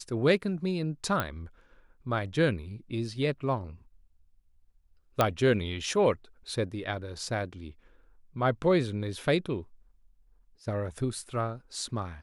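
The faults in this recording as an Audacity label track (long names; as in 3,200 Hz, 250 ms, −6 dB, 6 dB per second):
1.200000	1.200000	click −14 dBFS
5.210000	5.210000	click −9 dBFS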